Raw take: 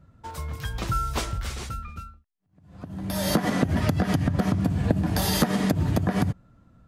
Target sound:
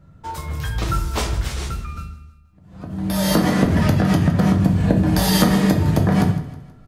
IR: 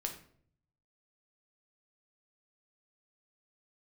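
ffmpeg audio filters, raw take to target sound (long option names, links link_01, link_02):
-filter_complex "[0:a]aecho=1:1:160|320|480|640:0.158|0.0666|0.028|0.0117[link_01];[1:a]atrim=start_sample=2205,afade=type=out:start_time=0.42:duration=0.01,atrim=end_sample=18963[link_02];[link_01][link_02]afir=irnorm=-1:irlink=0,volume=5.5dB"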